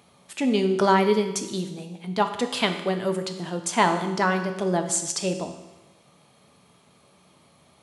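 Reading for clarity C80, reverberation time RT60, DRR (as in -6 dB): 10.5 dB, 1.1 s, 6.0 dB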